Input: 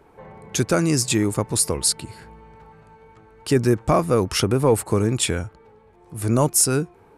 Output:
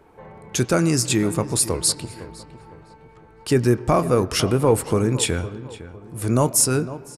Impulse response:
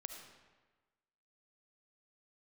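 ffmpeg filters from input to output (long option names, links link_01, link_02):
-filter_complex "[0:a]asplit=2[link_01][link_02];[link_02]adelay=507,lowpass=frequency=2200:poles=1,volume=-14.5dB,asplit=2[link_03][link_04];[link_04]adelay=507,lowpass=frequency=2200:poles=1,volume=0.38,asplit=2[link_05][link_06];[link_06]adelay=507,lowpass=frequency=2200:poles=1,volume=0.38,asplit=2[link_07][link_08];[link_08]adelay=507,lowpass=frequency=2200:poles=1,volume=0.38[link_09];[link_01][link_03][link_05][link_07][link_09]amix=inputs=5:normalize=0,asplit=2[link_10][link_11];[1:a]atrim=start_sample=2205,lowpass=3800,adelay=24[link_12];[link_11][link_12]afir=irnorm=-1:irlink=0,volume=-9dB[link_13];[link_10][link_13]amix=inputs=2:normalize=0"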